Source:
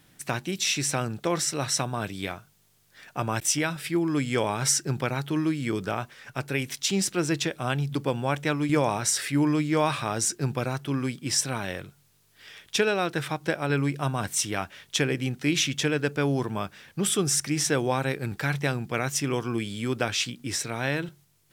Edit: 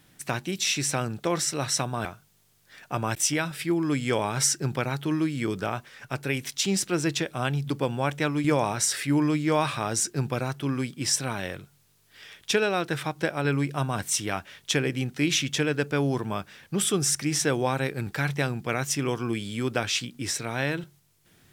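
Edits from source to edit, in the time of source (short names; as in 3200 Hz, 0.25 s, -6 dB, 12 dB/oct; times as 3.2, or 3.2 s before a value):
2.05–2.3 cut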